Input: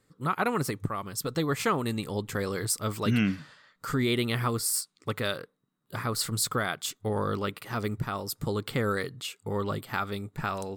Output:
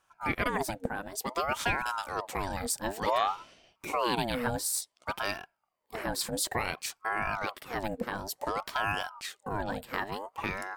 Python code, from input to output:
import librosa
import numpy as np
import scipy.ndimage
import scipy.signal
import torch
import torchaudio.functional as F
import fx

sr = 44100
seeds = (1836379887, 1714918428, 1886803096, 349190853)

y = fx.ring_lfo(x, sr, carrier_hz=790.0, swing_pct=55, hz=0.56)